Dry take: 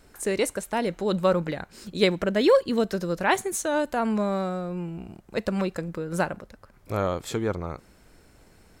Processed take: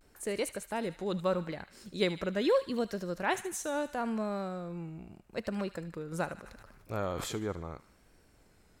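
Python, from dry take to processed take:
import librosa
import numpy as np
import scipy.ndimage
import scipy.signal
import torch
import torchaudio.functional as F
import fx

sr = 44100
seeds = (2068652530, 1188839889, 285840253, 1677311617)

p1 = fx.vibrato(x, sr, rate_hz=0.77, depth_cents=70.0)
p2 = p1 + fx.echo_wet_highpass(p1, sr, ms=75, feedback_pct=55, hz=1400.0, wet_db=-12.0, dry=0)
p3 = fx.sustainer(p2, sr, db_per_s=27.0, at=(6.38, 7.34))
y = p3 * 10.0 ** (-8.5 / 20.0)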